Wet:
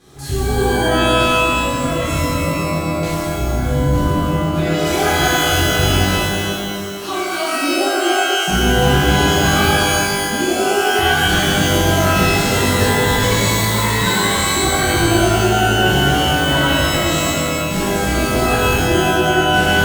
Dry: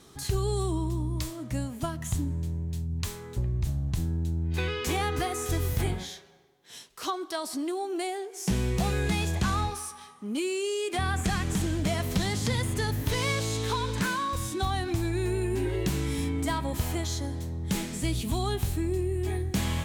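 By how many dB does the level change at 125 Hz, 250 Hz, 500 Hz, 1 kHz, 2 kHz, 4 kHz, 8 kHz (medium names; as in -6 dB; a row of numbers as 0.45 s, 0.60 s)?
+10.0 dB, +13.5 dB, +15.0 dB, +17.0 dB, +20.0 dB, +18.5 dB, +15.0 dB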